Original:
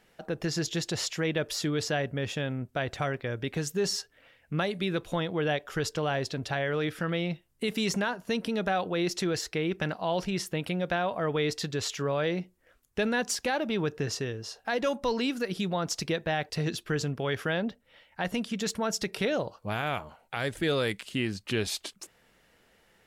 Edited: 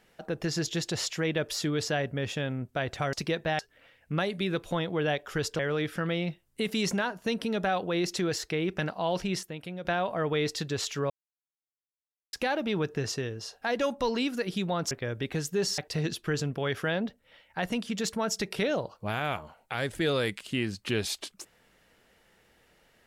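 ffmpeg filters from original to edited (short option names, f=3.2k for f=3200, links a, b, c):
-filter_complex "[0:a]asplit=10[a][b][c][d][e][f][g][h][i][j];[a]atrim=end=3.132[k];[b]atrim=start=15.938:end=16.402[l];[c]atrim=start=3.998:end=6.002[m];[d]atrim=start=6.618:end=10.462[n];[e]atrim=start=10.458:end=10.882,asetpts=PTS-STARTPTS,volume=-8dB[o];[f]atrim=start=10.878:end=12.13,asetpts=PTS-STARTPTS,afade=t=out:st=1.248:d=0.004:c=hsin[p];[g]atrim=start=12.13:end=13.36,asetpts=PTS-STARTPTS,volume=0[q];[h]atrim=start=13.36:end=15.942,asetpts=PTS-STARTPTS,afade=t=in:d=0.004:c=hsin[r];[i]atrim=start=3.128:end=4.002[s];[j]atrim=start=16.398[t];[k][l]acrossfade=d=0.004:c1=hsin:c2=hsin[u];[u][m]acrossfade=d=0.004:c1=hsin:c2=hsin[v];[v][n]acrossfade=d=0.004:c1=hsin:c2=hsin[w];[w][o]acrossfade=d=0.004:c1=hsin:c2=hsin[x];[p][q][r]concat=n=3:v=0:a=1[y];[x][y]acrossfade=d=0.004:c1=hsin:c2=hsin[z];[z][s]acrossfade=d=0.004:c1=hsin:c2=hsin[aa];[aa][t]acrossfade=d=0.004:c1=hsin:c2=hsin"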